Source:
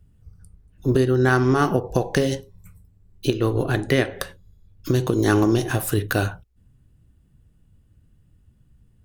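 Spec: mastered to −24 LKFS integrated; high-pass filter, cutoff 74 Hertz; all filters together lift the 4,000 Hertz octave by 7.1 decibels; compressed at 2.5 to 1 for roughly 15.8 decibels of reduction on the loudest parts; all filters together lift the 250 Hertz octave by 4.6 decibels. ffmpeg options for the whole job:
ffmpeg -i in.wav -af "highpass=74,equalizer=frequency=250:width_type=o:gain=6,equalizer=frequency=4000:width_type=o:gain=9,acompressor=threshold=-36dB:ratio=2.5,volume=9.5dB" out.wav

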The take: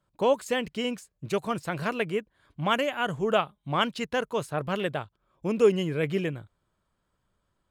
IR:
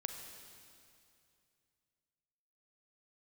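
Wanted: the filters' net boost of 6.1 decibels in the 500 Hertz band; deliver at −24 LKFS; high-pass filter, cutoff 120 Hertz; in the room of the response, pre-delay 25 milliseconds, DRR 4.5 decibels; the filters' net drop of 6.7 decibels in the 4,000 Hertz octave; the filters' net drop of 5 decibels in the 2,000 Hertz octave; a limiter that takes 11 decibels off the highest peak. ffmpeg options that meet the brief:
-filter_complex "[0:a]highpass=120,equalizer=frequency=500:width_type=o:gain=7.5,equalizer=frequency=2000:width_type=o:gain=-6,equalizer=frequency=4000:width_type=o:gain=-7,alimiter=limit=-15.5dB:level=0:latency=1,asplit=2[link_01][link_02];[1:a]atrim=start_sample=2205,adelay=25[link_03];[link_02][link_03]afir=irnorm=-1:irlink=0,volume=-4dB[link_04];[link_01][link_04]amix=inputs=2:normalize=0,volume=2dB"

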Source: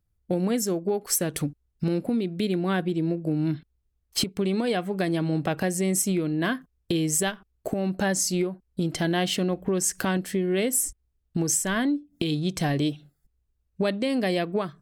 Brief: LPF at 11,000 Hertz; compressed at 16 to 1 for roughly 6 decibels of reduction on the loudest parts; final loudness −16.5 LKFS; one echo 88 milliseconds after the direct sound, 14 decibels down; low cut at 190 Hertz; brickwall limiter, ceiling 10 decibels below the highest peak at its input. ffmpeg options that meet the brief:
ffmpeg -i in.wav -af "highpass=190,lowpass=11000,acompressor=threshold=-27dB:ratio=16,alimiter=limit=-24dB:level=0:latency=1,aecho=1:1:88:0.2,volume=18dB" out.wav

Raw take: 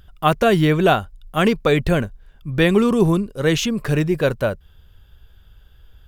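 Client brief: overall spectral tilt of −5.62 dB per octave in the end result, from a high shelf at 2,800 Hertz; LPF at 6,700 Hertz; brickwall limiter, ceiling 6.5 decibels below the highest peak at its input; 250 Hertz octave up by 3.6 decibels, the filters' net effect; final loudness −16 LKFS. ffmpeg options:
ffmpeg -i in.wav -af "lowpass=6700,equalizer=frequency=250:width_type=o:gain=5,highshelf=frequency=2800:gain=4,volume=3.5dB,alimiter=limit=-5dB:level=0:latency=1" out.wav

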